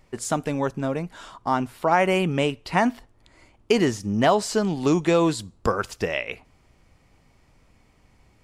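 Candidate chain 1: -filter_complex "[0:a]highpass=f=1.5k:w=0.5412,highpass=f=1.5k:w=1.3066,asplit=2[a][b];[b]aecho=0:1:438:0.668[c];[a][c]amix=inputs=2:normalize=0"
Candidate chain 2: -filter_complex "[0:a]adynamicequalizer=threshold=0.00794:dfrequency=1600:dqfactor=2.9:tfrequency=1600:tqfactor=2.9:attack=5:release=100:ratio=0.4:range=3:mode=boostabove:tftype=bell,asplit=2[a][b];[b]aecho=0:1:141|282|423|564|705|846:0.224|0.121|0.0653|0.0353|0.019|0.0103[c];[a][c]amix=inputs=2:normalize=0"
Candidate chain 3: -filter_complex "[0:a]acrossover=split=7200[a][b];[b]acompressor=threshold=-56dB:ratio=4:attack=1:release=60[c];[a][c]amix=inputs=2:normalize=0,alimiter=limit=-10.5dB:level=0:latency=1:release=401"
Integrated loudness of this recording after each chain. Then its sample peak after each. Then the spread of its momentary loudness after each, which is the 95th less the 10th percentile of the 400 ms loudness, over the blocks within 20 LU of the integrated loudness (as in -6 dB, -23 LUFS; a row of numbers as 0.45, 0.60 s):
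-31.5, -23.0, -25.0 LUFS; -12.5, -4.5, -10.5 dBFS; 10, 13, 7 LU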